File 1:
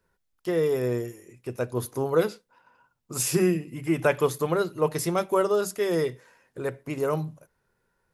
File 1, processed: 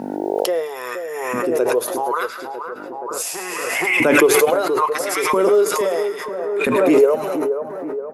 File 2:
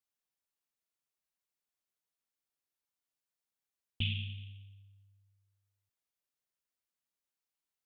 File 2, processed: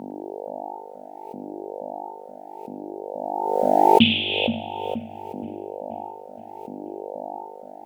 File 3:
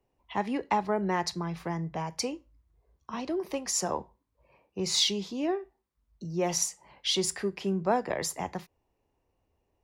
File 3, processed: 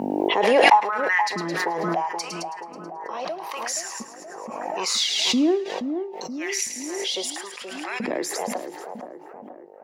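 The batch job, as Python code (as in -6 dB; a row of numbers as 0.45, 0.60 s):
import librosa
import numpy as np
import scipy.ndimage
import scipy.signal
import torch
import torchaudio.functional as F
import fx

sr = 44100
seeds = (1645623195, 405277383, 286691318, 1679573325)

y = fx.dmg_buzz(x, sr, base_hz=50.0, harmonics=18, level_db=-58.0, tilt_db=-1, odd_only=False)
y = fx.filter_lfo_highpass(y, sr, shape='saw_up', hz=0.75, low_hz=220.0, high_hz=2600.0, q=5.2)
y = fx.echo_split(y, sr, split_hz=1500.0, low_ms=475, high_ms=108, feedback_pct=52, wet_db=-8)
y = fx.pre_swell(y, sr, db_per_s=24.0)
y = y * 10.0 ** (-1.5 / 20.0) / np.max(np.abs(y))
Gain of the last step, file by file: +1.0, +16.0, -0.5 dB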